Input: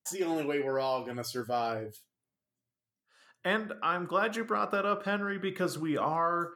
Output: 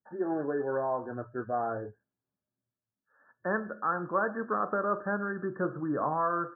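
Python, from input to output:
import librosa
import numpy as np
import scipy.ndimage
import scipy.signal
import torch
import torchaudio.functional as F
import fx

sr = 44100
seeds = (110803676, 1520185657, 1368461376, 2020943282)

y = fx.brickwall_lowpass(x, sr, high_hz=1800.0)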